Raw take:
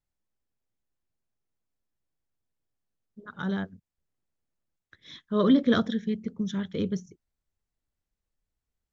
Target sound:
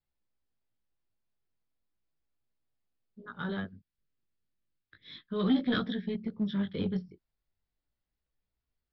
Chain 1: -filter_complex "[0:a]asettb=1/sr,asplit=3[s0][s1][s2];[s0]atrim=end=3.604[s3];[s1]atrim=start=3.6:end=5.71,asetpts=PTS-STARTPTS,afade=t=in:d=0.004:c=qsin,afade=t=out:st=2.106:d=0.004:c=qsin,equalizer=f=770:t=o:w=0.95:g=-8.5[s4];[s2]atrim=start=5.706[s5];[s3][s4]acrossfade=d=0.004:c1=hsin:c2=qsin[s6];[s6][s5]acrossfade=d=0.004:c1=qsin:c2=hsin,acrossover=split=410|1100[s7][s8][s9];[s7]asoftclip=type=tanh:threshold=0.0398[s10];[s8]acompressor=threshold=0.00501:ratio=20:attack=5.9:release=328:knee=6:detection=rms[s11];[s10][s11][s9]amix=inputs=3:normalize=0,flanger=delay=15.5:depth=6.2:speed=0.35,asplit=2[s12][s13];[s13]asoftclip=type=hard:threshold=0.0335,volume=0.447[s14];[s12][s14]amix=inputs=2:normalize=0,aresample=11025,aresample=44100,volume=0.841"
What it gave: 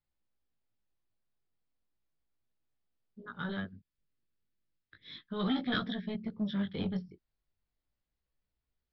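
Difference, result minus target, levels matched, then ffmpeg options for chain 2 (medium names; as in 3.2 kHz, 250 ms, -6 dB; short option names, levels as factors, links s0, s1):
compression: peak gain reduction +7.5 dB; saturation: distortion +9 dB
-filter_complex "[0:a]asettb=1/sr,asplit=3[s0][s1][s2];[s0]atrim=end=3.604[s3];[s1]atrim=start=3.6:end=5.71,asetpts=PTS-STARTPTS,afade=t=in:d=0.004:c=qsin,afade=t=out:st=2.106:d=0.004:c=qsin,equalizer=f=770:t=o:w=0.95:g=-8.5[s4];[s2]atrim=start=5.706[s5];[s3][s4]acrossfade=d=0.004:c1=hsin:c2=qsin[s6];[s6][s5]acrossfade=d=0.004:c1=qsin:c2=hsin,acrossover=split=410|1100[s7][s8][s9];[s7]asoftclip=type=tanh:threshold=0.119[s10];[s8]acompressor=threshold=0.0126:ratio=20:attack=5.9:release=328:knee=6:detection=rms[s11];[s10][s11][s9]amix=inputs=3:normalize=0,flanger=delay=15.5:depth=6.2:speed=0.35,asplit=2[s12][s13];[s13]asoftclip=type=hard:threshold=0.0335,volume=0.447[s14];[s12][s14]amix=inputs=2:normalize=0,aresample=11025,aresample=44100,volume=0.841"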